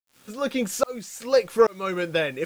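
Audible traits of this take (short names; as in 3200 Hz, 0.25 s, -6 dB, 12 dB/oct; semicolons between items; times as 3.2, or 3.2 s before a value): tremolo saw up 1.2 Hz, depth 100%; a quantiser's noise floor 10-bit, dither none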